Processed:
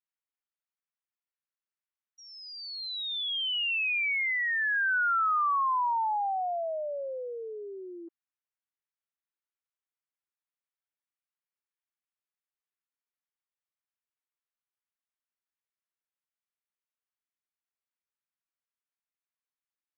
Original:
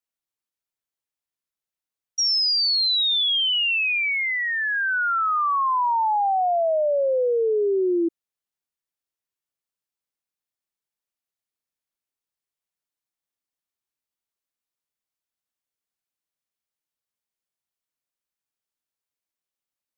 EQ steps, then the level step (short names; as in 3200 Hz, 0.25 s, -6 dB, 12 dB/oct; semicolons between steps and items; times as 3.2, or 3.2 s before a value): Gaussian blur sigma 3.3 samples; HPF 1200 Hz 12 dB/oct; 0.0 dB